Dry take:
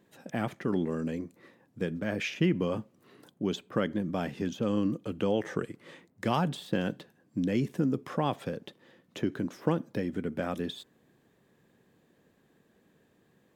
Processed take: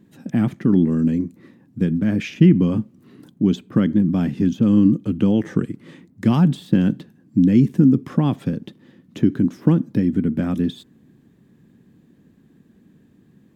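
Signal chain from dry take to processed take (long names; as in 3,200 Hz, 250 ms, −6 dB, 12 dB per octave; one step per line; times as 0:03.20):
low shelf with overshoot 370 Hz +11 dB, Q 1.5
level +2.5 dB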